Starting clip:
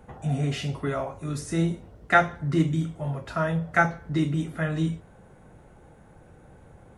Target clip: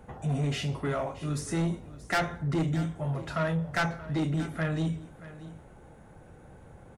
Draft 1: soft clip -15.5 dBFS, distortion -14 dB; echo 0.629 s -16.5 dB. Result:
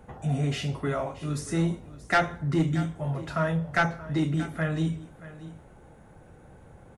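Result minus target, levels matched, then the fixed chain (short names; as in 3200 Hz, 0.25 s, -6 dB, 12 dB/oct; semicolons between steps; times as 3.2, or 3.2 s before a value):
soft clip: distortion -6 dB
soft clip -23 dBFS, distortion -8 dB; echo 0.629 s -16.5 dB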